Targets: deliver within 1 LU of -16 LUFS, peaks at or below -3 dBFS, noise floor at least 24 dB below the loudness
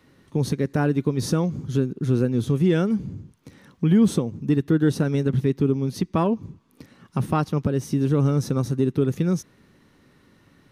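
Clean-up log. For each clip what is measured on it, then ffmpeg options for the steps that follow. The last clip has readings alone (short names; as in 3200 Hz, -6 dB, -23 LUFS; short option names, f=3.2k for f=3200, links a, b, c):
loudness -23.0 LUFS; peak -8.5 dBFS; loudness target -16.0 LUFS
-> -af "volume=7dB,alimiter=limit=-3dB:level=0:latency=1"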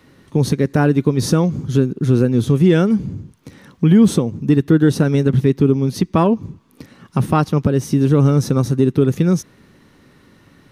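loudness -16.0 LUFS; peak -3.0 dBFS; noise floor -52 dBFS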